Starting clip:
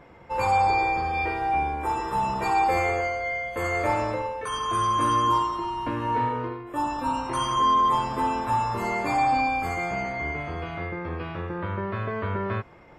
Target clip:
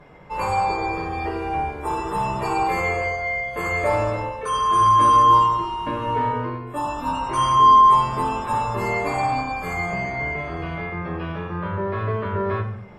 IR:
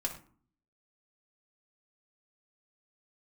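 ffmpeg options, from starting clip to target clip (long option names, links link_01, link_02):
-filter_complex "[1:a]atrim=start_sample=2205,asetrate=29106,aresample=44100[link_01];[0:a][link_01]afir=irnorm=-1:irlink=0,volume=-2dB"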